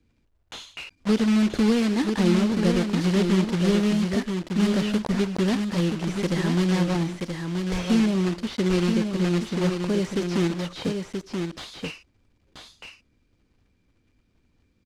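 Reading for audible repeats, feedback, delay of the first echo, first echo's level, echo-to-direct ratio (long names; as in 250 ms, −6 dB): 1, repeats not evenly spaced, 979 ms, −5.5 dB, −5.5 dB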